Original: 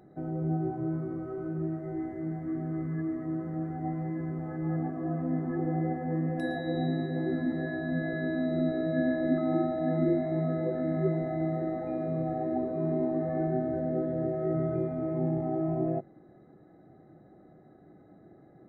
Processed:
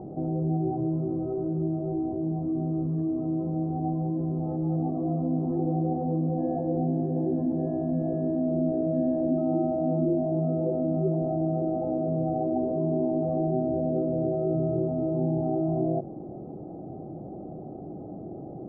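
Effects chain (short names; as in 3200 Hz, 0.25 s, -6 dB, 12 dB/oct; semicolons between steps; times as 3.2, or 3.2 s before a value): steep low-pass 890 Hz 36 dB/oct; fast leveller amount 50%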